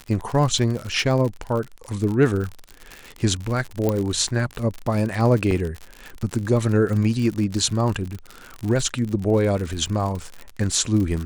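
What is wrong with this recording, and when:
surface crackle 69 per second −26 dBFS
0:03.89: click −9 dBFS
0:05.51: drop-out 2.1 ms

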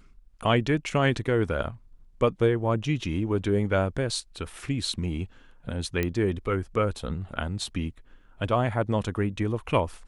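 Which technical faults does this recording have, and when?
0:06.03: click −13 dBFS

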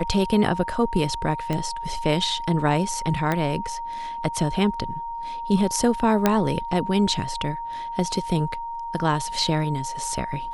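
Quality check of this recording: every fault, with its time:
whistle 930 Hz −29 dBFS
0:01.53: click −14 dBFS
0:03.32: click −11 dBFS
0:06.26: click −4 dBFS

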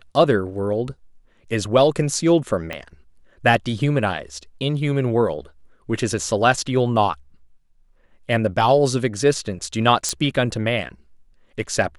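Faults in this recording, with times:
0:02.73: click −14 dBFS
0:10.09: click −8 dBFS

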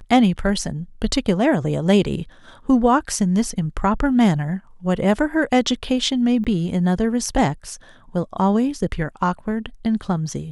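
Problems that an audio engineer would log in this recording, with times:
0:06.44–0:06.45: drop-out 7.9 ms

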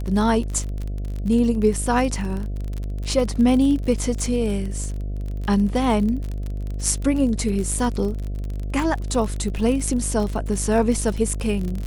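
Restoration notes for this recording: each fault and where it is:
mains buzz 50 Hz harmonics 14 −27 dBFS
surface crackle 37 per second −26 dBFS

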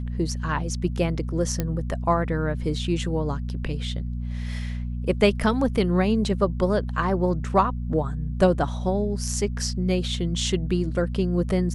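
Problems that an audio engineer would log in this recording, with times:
mains hum 60 Hz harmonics 4 −29 dBFS
0:01.60: click −11 dBFS

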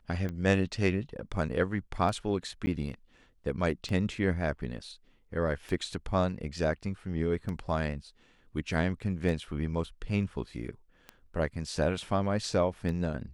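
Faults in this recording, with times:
scratch tick 33 1/3 rpm −24 dBFS
0:02.66–0:02.67: drop-out 10 ms

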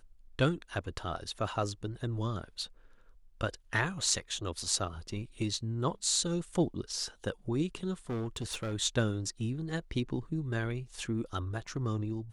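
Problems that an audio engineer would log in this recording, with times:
0:08.10–0:08.74: clipping −31.5 dBFS

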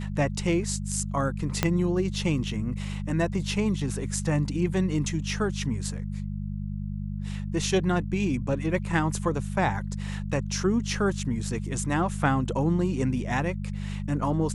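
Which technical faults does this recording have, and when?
mains hum 50 Hz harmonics 4 −32 dBFS
0:01.63: click −7 dBFS

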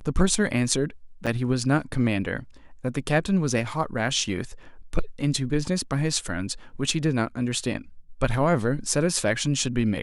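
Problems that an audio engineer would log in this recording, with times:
0:01.26–0:01.27: drop-out 7.3 ms

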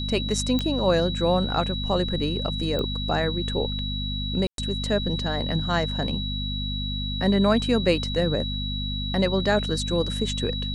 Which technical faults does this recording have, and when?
mains hum 50 Hz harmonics 5 −30 dBFS
whistle 3,900 Hz −31 dBFS
0:00.59: click −13 dBFS
0:02.79: click −16 dBFS
0:04.47–0:04.58: drop-out 112 ms

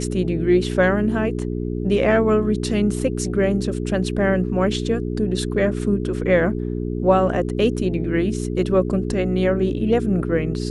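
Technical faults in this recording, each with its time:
mains hum 60 Hz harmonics 7 −25 dBFS

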